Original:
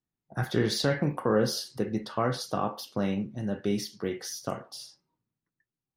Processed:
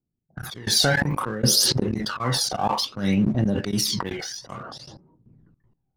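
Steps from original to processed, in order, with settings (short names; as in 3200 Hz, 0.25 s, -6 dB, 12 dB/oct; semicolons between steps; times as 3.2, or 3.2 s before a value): low-pass opened by the level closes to 550 Hz, open at -26.5 dBFS; high shelf 4600 Hz +9.5 dB; auto swell 0.123 s; phaser 0.59 Hz, delay 1.4 ms, feedback 63%; in parallel at -3 dB: crossover distortion -40.5 dBFS; on the sum: step gate "xx.x...x" 157 bpm -24 dB; sustainer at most 23 dB/s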